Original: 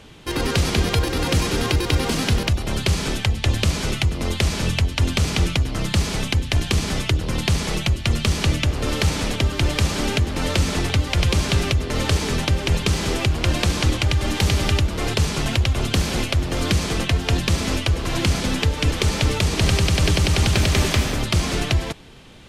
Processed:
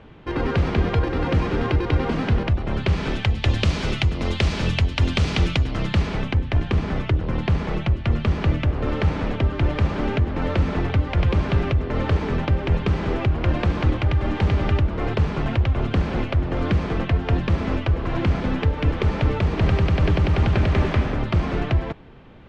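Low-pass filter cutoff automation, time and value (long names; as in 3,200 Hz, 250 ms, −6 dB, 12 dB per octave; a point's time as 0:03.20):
0:02.65 1,800 Hz
0:03.51 3,900 Hz
0:05.58 3,900 Hz
0:06.40 1,700 Hz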